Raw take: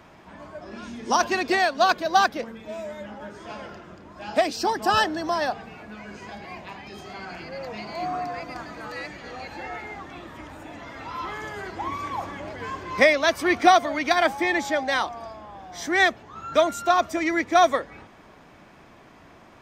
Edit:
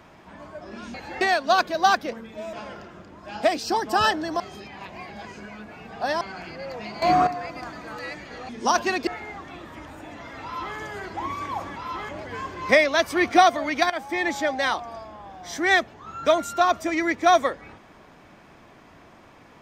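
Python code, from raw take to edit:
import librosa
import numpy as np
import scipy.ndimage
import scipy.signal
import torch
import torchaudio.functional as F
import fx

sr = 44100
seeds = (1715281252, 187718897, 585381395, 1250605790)

y = fx.edit(x, sr, fx.swap(start_s=0.94, length_s=0.58, other_s=9.42, other_length_s=0.27),
    fx.cut(start_s=2.84, length_s=0.62),
    fx.reverse_span(start_s=5.33, length_s=1.81),
    fx.clip_gain(start_s=7.95, length_s=0.25, db=10.5),
    fx.duplicate(start_s=11.05, length_s=0.33, to_s=12.38),
    fx.fade_in_from(start_s=14.19, length_s=0.56, curve='qsin', floor_db=-14.5), tone=tone)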